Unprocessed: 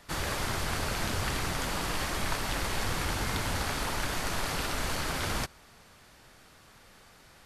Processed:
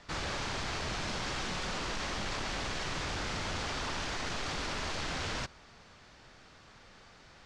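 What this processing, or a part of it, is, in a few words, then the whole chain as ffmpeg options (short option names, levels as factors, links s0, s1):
synthesiser wavefolder: -filter_complex "[0:a]asettb=1/sr,asplit=3[s0][s1][s2];[s0]atrim=end=1.074[s3];[s1]atrim=start=1.07:end=1.77,asetpts=PTS-STARTPTS,afade=t=in:d=0.004:c=qsin,afade=t=out:st=0.696:d=0.004:c=qsin,aecho=1:1:5.4:0.45,atrim=end_sample=30870[s4];[s2]atrim=start=1.766[s5];[s3][s4]acrossfade=d=0.004:c1=hsin:c2=qsin[s6];[s6][s5]acrossfade=d=0.004:c1=qsin:c2=hsin,aeval=exprs='0.0299*(abs(mod(val(0)/0.0299+3,4)-2)-1)':c=same,lowpass=f=6500:w=0.5412,lowpass=f=6500:w=1.3066"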